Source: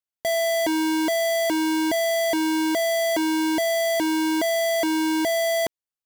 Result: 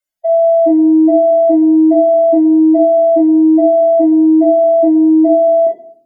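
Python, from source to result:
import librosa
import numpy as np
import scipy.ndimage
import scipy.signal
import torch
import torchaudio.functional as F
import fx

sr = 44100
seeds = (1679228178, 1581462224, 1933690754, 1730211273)

y = fx.spec_expand(x, sr, power=3.7)
y = fx.room_shoebox(y, sr, seeds[0], volume_m3=610.0, walls='furnished', distance_m=2.7)
y = F.gain(torch.from_numpy(y), 7.0).numpy()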